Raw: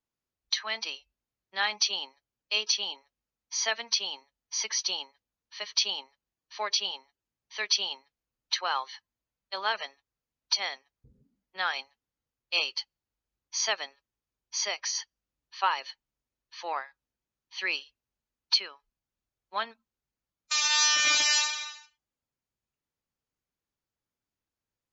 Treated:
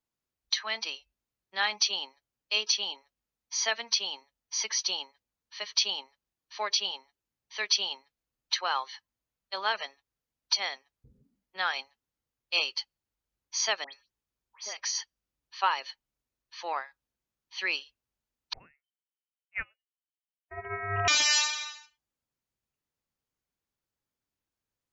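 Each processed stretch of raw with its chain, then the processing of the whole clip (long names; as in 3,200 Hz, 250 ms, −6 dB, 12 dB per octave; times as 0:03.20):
0:13.84–0:14.77: downward compressor 3 to 1, threshold −38 dBFS + all-pass dispersion highs, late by 104 ms, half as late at 2,500 Hz
0:18.53–0:21.08: voice inversion scrambler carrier 3,100 Hz + expander for the loud parts 2.5 to 1, over −37 dBFS
whole clip: no processing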